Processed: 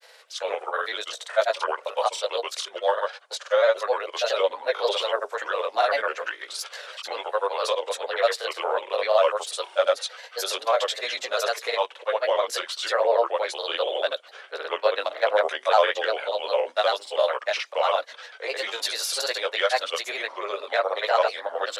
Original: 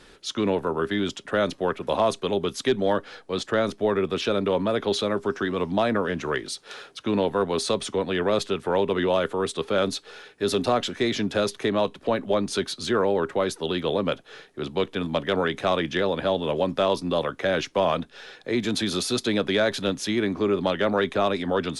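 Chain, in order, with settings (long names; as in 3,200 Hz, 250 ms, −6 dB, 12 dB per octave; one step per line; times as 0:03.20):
multi-voice chorus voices 4, 0.75 Hz, delay 21 ms, depth 1.1 ms
granular cloud, pitch spread up and down by 3 semitones
elliptic high-pass filter 530 Hz, stop band 80 dB
level +7 dB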